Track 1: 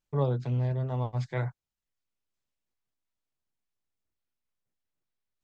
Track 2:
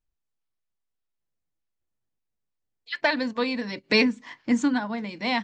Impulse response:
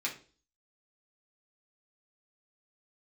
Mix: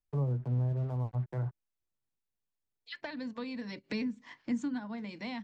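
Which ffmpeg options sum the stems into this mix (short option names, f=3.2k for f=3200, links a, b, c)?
-filter_complex "[0:a]lowpass=f=1.4k:w=0.5412,lowpass=f=1.4k:w=1.3066,aeval=exprs='sgn(val(0))*max(abs(val(0))-0.00335,0)':c=same,volume=-1dB[a];[1:a]volume=-6dB[b];[a][b]amix=inputs=2:normalize=0,acrossover=split=240[c][d];[d]acompressor=threshold=-42dB:ratio=4[e];[c][e]amix=inputs=2:normalize=0"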